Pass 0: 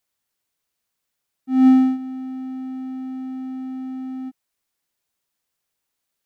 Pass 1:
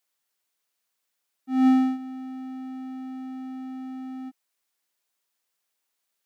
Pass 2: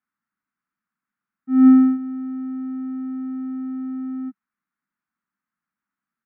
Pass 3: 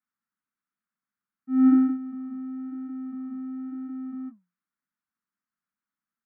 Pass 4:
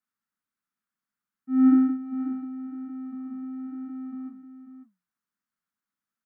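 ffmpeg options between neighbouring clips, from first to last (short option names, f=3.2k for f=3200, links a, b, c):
-af "highpass=f=450:p=1"
-af "firequalizer=gain_entry='entry(120,0);entry(200,12);entry(460,-19);entry(1300,3);entry(3100,-22);entry(5100,-26)':delay=0.05:min_phase=1,volume=3dB"
-af "flanger=delay=0.9:depth=7.6:regen=-81:speed=1:shape=sinusoidal,volume=-2dB"
-af "aecho=1:1:541:0.282"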